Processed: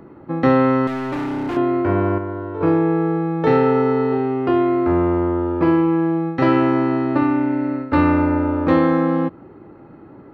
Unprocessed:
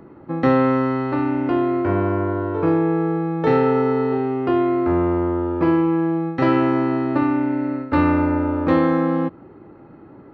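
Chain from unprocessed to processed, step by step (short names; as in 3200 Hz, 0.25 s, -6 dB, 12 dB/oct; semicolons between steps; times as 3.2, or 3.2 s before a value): 0.87–1.57 overloaded stage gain 23 dB; 2.18–2.61 resonator 220 Hz, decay 1.4 s, mix 50%; gain +1.5 dB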